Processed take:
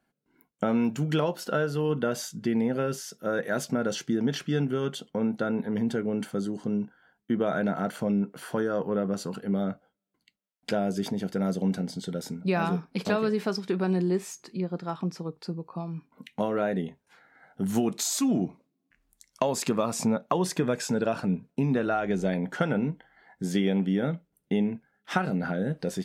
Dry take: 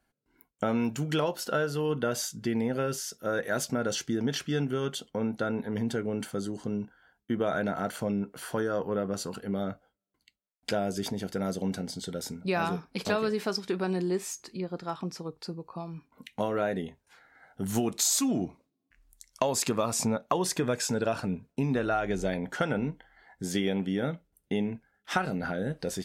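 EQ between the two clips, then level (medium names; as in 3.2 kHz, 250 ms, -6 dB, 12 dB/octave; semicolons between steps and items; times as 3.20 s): tone controls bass -11 dB, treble -4 dB; peaking EQ 170 Hz +14.5 dB 1.4 oct; 0.0 dB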